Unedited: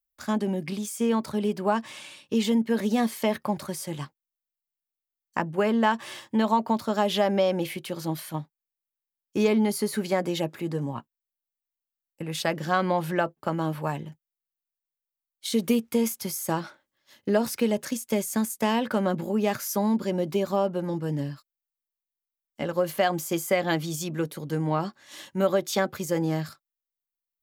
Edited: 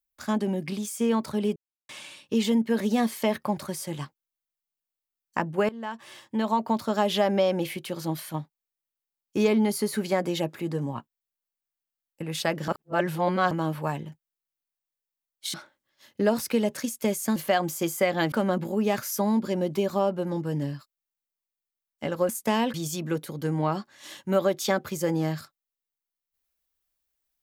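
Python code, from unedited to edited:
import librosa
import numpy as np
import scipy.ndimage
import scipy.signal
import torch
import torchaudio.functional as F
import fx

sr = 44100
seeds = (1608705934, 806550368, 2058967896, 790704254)

y = fx.edit(x, sr, fx.silence(start_s=1.56, length_s=0.33),
    fx.fade_in_from(start_s=5.69, length_s=1.12, floor_db=-20.0),
    fx.reverse_span(start_s=12.68, length_s=0.83),
    fx.cut(start_s=15.54, length_s=1.08),
    fx.swap(start_s=18.44, length_s=0.45, other_s=22.86, other_length_s=0.96), tone=tone)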